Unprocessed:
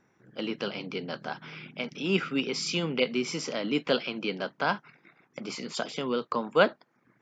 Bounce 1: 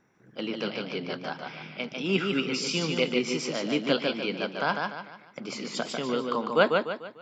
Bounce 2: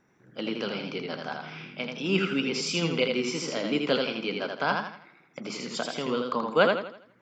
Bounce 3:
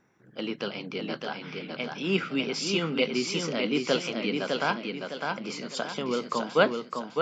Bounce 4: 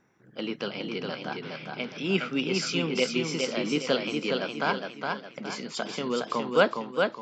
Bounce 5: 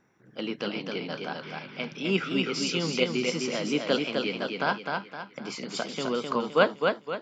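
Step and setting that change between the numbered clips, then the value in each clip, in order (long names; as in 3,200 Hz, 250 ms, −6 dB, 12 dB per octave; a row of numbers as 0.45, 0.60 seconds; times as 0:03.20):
feedback echo with a swinging delay time, delay time: 148, 82, 607, 413, 258 milliseconds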